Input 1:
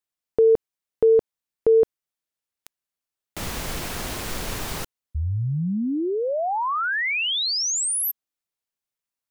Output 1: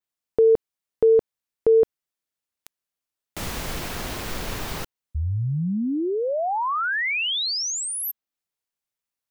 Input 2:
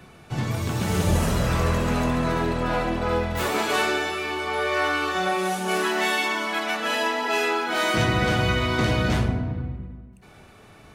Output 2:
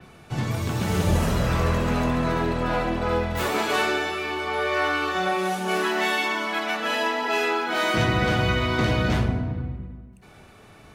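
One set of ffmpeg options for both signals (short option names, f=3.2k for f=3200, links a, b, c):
-af "adynamicequalizer=threshold=0.00501:dfrequency=9300:dqfactor=0.76:tfrequency=9300:tqfactor=0.76:attack=5:release=100:ratio=0.375:range=2.5:mode=cutabove:tftype=bell"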